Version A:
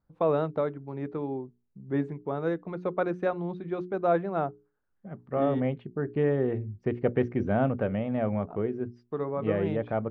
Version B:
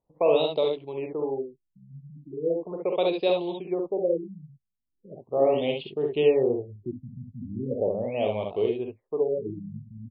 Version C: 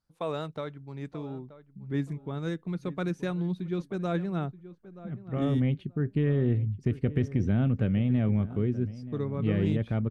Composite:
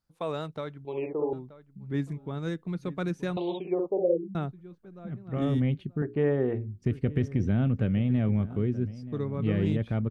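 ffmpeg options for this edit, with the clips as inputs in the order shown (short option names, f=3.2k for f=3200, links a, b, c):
-filter_complex "[1:a]asplit=2[a][b];[2:a]asplit=4[c][d][e][f];[c]atrim=end=0.852[g];[a]atrim=start=0.848:end=1.332[h];[d]atrim=start=1.328:end=3.372[i];[b]atrim=start=3.368:end=4.352[j];[e]atrim=start=4.348:end=6.022[k];[0:a]atrim=start=6.018:end=6.822[l];[f]atrim=start=6.818[m];[g][h]acrossfade=d=0.004:c1=hsin:c2=hsin[n];[n][i]acrossfade=d=0.004:c1=hsin:c2=hsin[o];[o][j]acrossfade=d=0.004:c1=hsin:c2=hsin[p];[p][k]acrossfade=d=0.004:c1=hsin:c2=hsin[q];[q][l]acrossfade=d=0.004:c1=hsin:c2=hsin[r];[r][m]acrossfade=d=0.004:c1=hsin:c2=hsin"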